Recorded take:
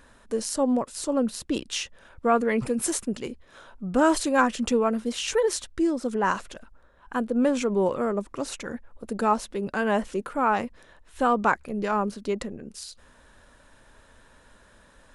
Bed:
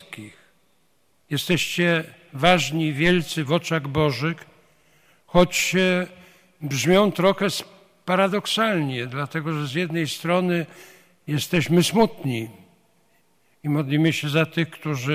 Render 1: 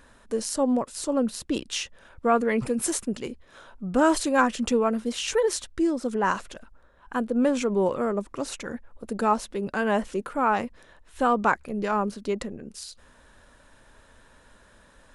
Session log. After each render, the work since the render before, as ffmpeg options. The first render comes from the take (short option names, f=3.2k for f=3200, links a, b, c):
-af anull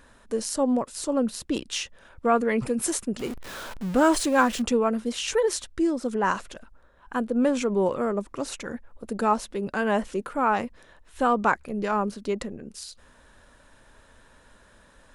-filter_complex "[0:a]asettb=1/sr,asplit=3[a][b][c];[a]atrim=end=1.544[d];[b]atrim=start=1.54:end=2.26,asetpts=PTS-STARTPTS,afade=t=in:d=0.004:c=qsin,afade=t=out:st=0.716:d=0.004:c=qsin,asoftclip=type=hard:threshold=-18.5dB[e];[c]atrim=start=2.256[f];[d][e]acrossfade=d=0.004:c1=hsin:c2=qsin[g];[g][f]acrossfade=d=0.004:c1=qsin:c2=hsin,asettb=1/sr,asplit=3[h][i][j];[h]atrim=end=3.194[k];[i]atrim=start=3.19:end=4.62,asetpts=PTS-STARTPTS,afade=t=in:d=0.004:c=qsin,afade=t=out:st=1.426:d=0.004:c=qsin,aeval=exprs='val(0)+0.5*0.0211*sgn(val(0))':c=same[l];[j]atrim=start=4.616[m];[k][l]acrossfade=d=0.004:c1=hsin:c2=qsin[n];[n][m]acrossfade=d=0.004:c1=qsin:c2=hsin"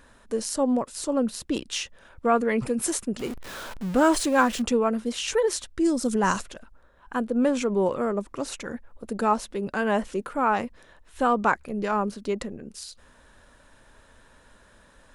-filter_complex "[0:a]asplit=3[a][b][c];[a]afade=t=out:st=5.84:d=0.02[d];[b]bass=f=250:g=8,treble=f=4k:g=13,afade=t=in:st=5.84:d=0.02,afade=t=out:st=6.41:d=0.02[e];[c]afade=t=in:st=6.41:d=0.02[f];[d][e][f]amix=inputs=3:normalize=0"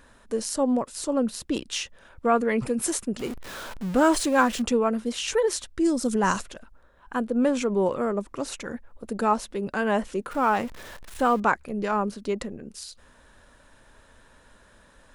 -filter_complex "[0:a]asettb=1/sr,asplit=3[a][b][c];[a]atrim=end=10.314[d];[b]atrim=start=10.31:end=11.4,asetpts=PTS-STARTPTS,afade=t=in:d=0.004:c=qsin,afade=t=out:st=1.086:d=0.004:c=qsin,aeval=exprs='val(0)+0.5*0.0126*sgn(val(0))':c=same[e];[c]atrim=start=11.396[f];[d][e]acrossfade=d=0.004:c1=hsin:c2=qsin[g];[g][f]acrossfade=d=0.004:c1=qsin:c2=hsin"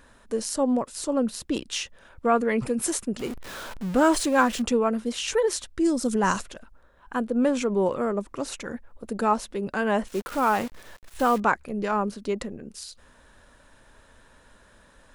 -filter_complex "[0:a]asettb=1/sr,asplit=3[a][b][c];[a]atrim=end=10.074[d];[b]atrim=start=10.07:end=11.38,asetpts=PTS-STARTPTS,afade=t=in:d=0.004:c=qsin,afade=t=out:st=1.306:d=0.004:c=qsin,acrusher=bits=7:dc=4:mix=0:aa=0.000001[e];[c]atrim=start=11.376[f];[d][e]acrossfade=d=0.004:c1=hsin:c2=qsin[g];[g][f]acrossfade=d=0.004:c1=qsin:c2=hsin"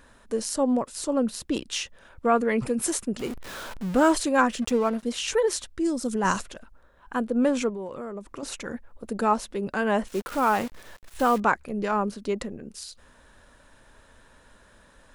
-filter_complex "[0:a]asettb=1/sr,asplit=3[a][b][c];[a]atrim=end=4.124[d];[b]atrim=start=4.12:end=5.03,asetpts=PTS-STARTPTS,afade=t=in:d=0.004:c=qsin,afade=t=out:st=0.906:d=0.004:c=qsin,aeval=exprs='sgn(val(0))*max(abs(val(0))-0.00944,0)':c=same[e];[c]atrim=start=5.026[f];[d][e]acrossfade=d=0.004:c1=hsin:c2=qsin[g];[g][f]acrossfade=d=0.004:c1=qsin:c2=hsin,asettb=1/sr,asplit=3[h][i][j];[h]atrim=end=7.694[k];[i]atrim=start=7.69:end=8.43,asetpts=PTS-STARTPTS,afade=t=in:d=0.004:c=qsin,afade=t=out:st=0.736:d=0.004:c=qsin,acompressor=threshold=-33dB:ratio=4:attack=3.2:release=140:knee=1:detection=peak[l];[j]atrim=start=8.426[m];[k][l]acrossfade=d=0.004:c1=hsin:c2=qsin[n];[n][m]acrossfade=d=0.004:c1=qsin:c2=hsin,asplit=3[o][p][q];[o]atrim=end=5.772[r];[p]atrim=start=5.768:end=6.252,asetpts=PTS-STARTPTS,volume=-3dB[s];[q]atrim=start=6.248[t];[r][s]acrossfade=d=0.004:c1=hsin:c2=hsin[u];[u][t]acrossfade=d=0.004:c1=hsin:c2=hsin"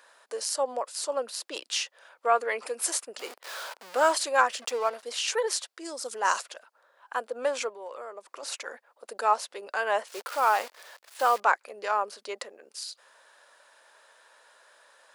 -af "highpass=f=530:w=0.5412,highpass=f=530:w=1.3066,equalizer=f=4.7k:t=o:w=0.29:g=5"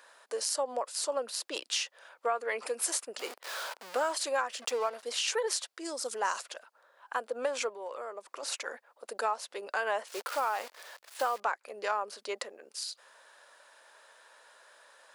-af "acompressor=threshold=-27dB:ratio=6"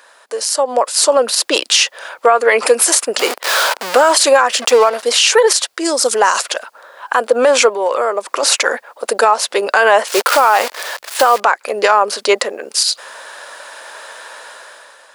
-af "dynaudnorm=f=170:g=9:m=13dB,alimiter=level_in=11.5dB:limit=-1dB:release=50:level=0:latency=1"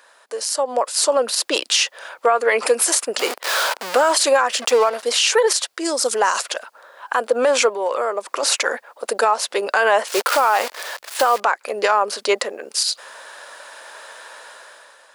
-af "volume=-5.5dB"